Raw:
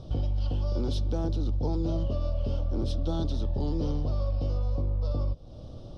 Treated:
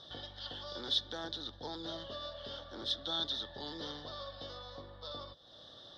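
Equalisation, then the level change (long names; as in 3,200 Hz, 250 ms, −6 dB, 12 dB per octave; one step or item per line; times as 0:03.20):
pair of resonant band-passes 2,500 Hz, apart 1 octave
+15.0 dB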